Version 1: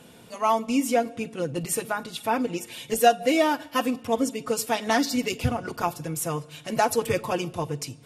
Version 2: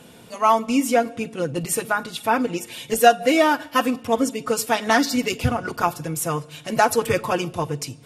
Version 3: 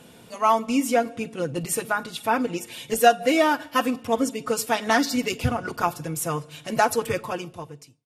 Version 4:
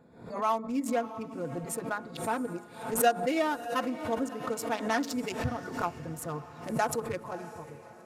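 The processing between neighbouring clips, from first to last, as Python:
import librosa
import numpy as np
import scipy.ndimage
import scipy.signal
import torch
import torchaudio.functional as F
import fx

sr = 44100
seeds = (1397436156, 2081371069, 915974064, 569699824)

y1 = fx.dynamic_eq(x, sr, hz=1400.0, q=1.7, threshold_db=-40.0, ratio=4.0, max_db=5)
y1 = y1 * librosa.db_to_amplitude(3.5)
y2 = fx.fade_out_tail(y1, sr, length_s=1.25)
y2 = y2 * librosa.db_to_amplitude(-2.5)
y3 = fx.wiener(y2, sr, points=15)
y3 = fx.echo_diffused(y3, sr, ms=619, feedback_pct=41, wet_db=-14.5)
y3 = fx.pre_swell(y3, sr, db_per_s=94.0)
y3 = y3 * librosa.db_to_amplitude(-8.5)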